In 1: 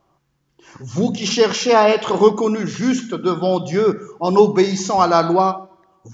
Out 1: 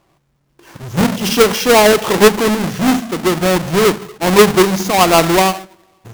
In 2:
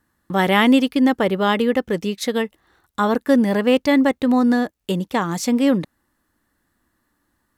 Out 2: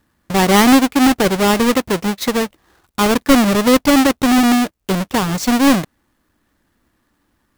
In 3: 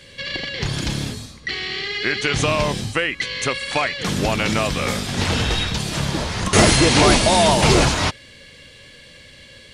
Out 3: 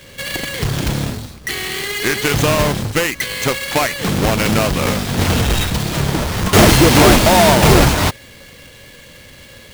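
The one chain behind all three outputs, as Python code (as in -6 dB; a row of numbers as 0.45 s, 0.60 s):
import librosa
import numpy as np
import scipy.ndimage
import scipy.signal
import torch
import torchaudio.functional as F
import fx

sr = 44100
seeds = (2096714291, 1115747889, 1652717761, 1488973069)

y = fx.halfwave_hold(x, sr)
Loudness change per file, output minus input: +4.5 LU, +4.5 LU, +4.0 LU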